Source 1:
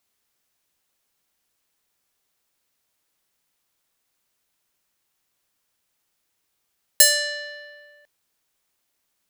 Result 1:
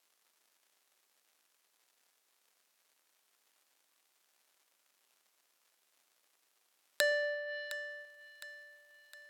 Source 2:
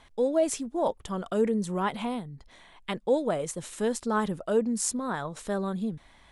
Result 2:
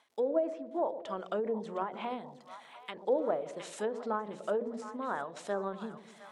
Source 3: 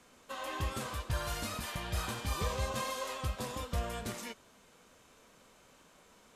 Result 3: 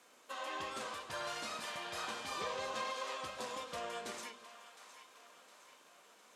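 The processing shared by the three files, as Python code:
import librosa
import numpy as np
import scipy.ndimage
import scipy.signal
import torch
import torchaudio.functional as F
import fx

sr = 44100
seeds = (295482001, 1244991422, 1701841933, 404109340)

p1 = fx.dmg_crackle(x, sr, seeds[0], per_s=220.0, level_db=-56.0)
p2 = scipy.signal.sosfilt(scipy.signal.butter(2, 350.0, 'highpass', fs=sr, output='sos'), p1)
p3 = fx.hum_notches(p2, sr, base_hz=60, count=9)
p4 = fx.env_lowpass_down(p3, sr, base_hz=1200.0, full_db=-26.5)
p5 = p4 + fx.echo_split(p4, sr, split_hz=750.0, low_ms=113, high_ms=711, feedback_pct=52, wet_db=-13, dry=0)
p6 = fx.end_taper(p5, sr, db_per_s=120.0)
y = p6 * 10.0 ** (-1.5 / 20.0)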